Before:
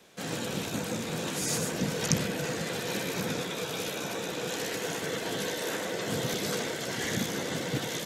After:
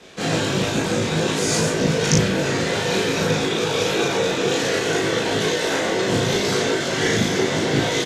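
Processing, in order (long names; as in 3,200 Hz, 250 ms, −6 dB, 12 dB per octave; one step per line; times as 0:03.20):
low-pass filter 6,800 Hz 12 dB per octave
parametric band 380 Hz +4 dB 0.32 octaves
in parallel at +1 dB: speech leveller
on the sum: floating-point word with a short mantissa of 8 bits
multi-voice chorus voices 6, 0.52 Hz, delay 20 ms, depth 1.8 ms
double-tracking delay 37 ms −2.5 dB
level +6 dB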